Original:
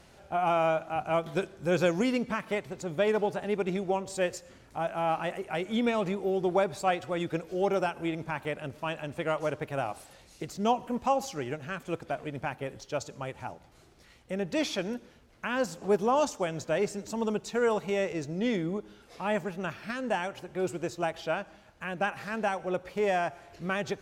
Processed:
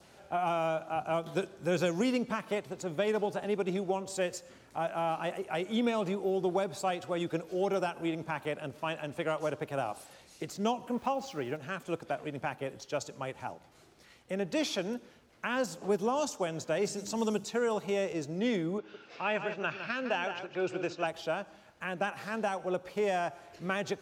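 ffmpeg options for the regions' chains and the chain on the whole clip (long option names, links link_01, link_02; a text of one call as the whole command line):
ffmpeg -i in.wav -filter_complex "[0:a]asettb=1/sr,asplit=3[link_01][link_02][link_03];[link_01]atrim=end=10.944[link_04];[link_02]atrim=start=10.94:end=11.57,asetpts=PTS-STARTPTS,afade=type=in:duration=0.004:curve=qsin,afade=type=out:start_time=0.626:duration=0.004:curve=qsin,lowpass=4200,aeval=exprs='val(0)*gte(abs(val(0)),0.00282)':channel_layout=same[link_05];[link_03]atrim=start=11.566[link_06];[link_04][link_05]acrossfade=duration=0.004:curve1=hsin:curve2=qsin[link_07];[link_07][link_06]acrossfade=duration=0.004:curve1=qsin:curve2=hsin,asettb=1/sr,asplit=3[link_08][link_09][link_10];[link_08]atrim=end=16.854[link_11];[link_09]atrim=start=16.85:end=17.44,asetpts=PTS-STARTPTS,afade=type=in:duration=0.004:curve=qsin,afade=type=out:start_time=0.586:duration=0.004:curve=qsin,acrossover=split=5300[link_12][link_13];[link_13]acompressor=threshold=-58dB:ratio=4:attack=1:release=60[link_14];[link_12][link_14]amix=inputs=2:normalize=0,bass=frequency=250:gain=3,treble=frequency=4000:gain=13,bandreject=frequency=50:width_type=h:width=6,bandreject=frequency=100:width_type=h:width=6,bandreject=frequency=150:width_type=h:width=6,bandreject=frequency=200:width_type=h:width=6,bandreject=frequency=250:width_type=h:width=6,bandreject=frequency=300:width_type=h:width=6[link_15];[link_10]atrim=start=17.436[link_16];[link_11][link_15]acrossfade=duration=0.004:curve1=hsin:curve2=qsin[link_17];[link_17][link_16]acrossfade=duration=0.004:curve1=qsin:curve2=hsin,asettb=1/sr,asplit=3[link_18][link_19][link_20];[link_18]atrim=end=18.784[link_21];[link_19]atrim=start=18.78:end=21.07,asetpts=PTS-STARTPTS,afade=type=in:duration=0.004:curve=qsin,afade=type=out:start_time=2.286:duration=0.004:curve=qsin,highpass=110,equalizer=frequency=200:width_type=q:width=4:gain=-6,equalizer=frequency=1500:width_type=q:width=4:gain=6,equalizer=frequency=2600:width_type=q:width=4:gain=9,lowpass=frequency=5700:width=0.5412,lowpass=frequency=5700:width=1.3066,aecho=1:1:158:0.335,atrim=end_sample=100989[link_22];[link_20]atrim=start=21.066[link_23];[link_21][link_22]acrossfade=duration=0.004:curve1=hsin:curve2=qsin[link_24];[link_24][link_23]acrossfade=duration=0.004:curve1=qsin:curve2=hsin,highpass=frequency=160:poles=1,adynamicequalizer=threshold=0.00282:dfrequency=2000:dqfactor=2.2:tfrequency=2000:tqfactor=2.2:attack=5:release=100:ratio=0.375:range=3:mode=cutabove:tftype=bell,acrossover=split=280|3000[link_25][link_26][link_27];[link_26]acompressor=threshold=-28dB:ratio=6[link_28];[link_25][link_28][link_27]amix=inputs=3:normalize=0" out.wav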